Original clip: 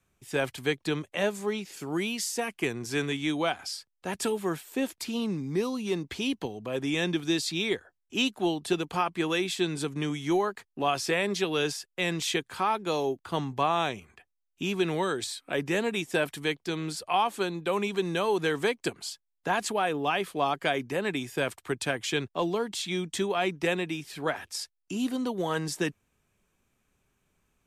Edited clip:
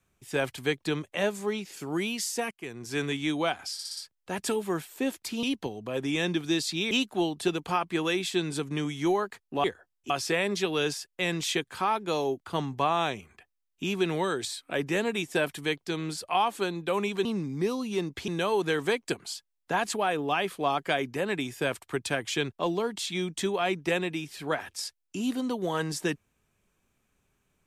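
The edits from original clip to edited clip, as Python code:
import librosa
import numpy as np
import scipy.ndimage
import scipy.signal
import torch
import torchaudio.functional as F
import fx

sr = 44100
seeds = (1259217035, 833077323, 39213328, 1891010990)

y = fx.edit(x, sr, fx.fade_in_from(start_s=2.51, length_s=0.55, floor_db=-22.0),
    fx.stutter(start_s=3.73, slice_s=0.06, count=5),
    fx.move(start_s=5.19, length_s=1.03, to_s=18.04),
    fx.move(start_s=7.7, length_s=0.46, to_s=10.89), tone=tone)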